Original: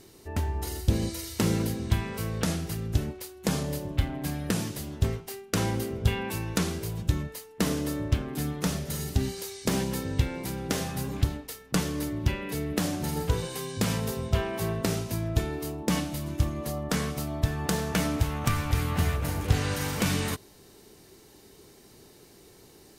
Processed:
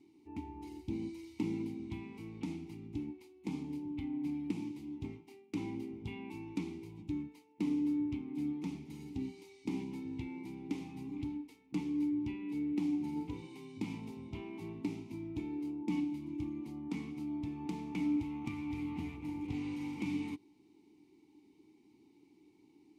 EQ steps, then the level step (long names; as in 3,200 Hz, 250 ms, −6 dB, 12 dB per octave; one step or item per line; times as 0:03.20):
formant filter u
parametric band 970 Hz −10.5 dB 2.9 octaves
+5.5 dB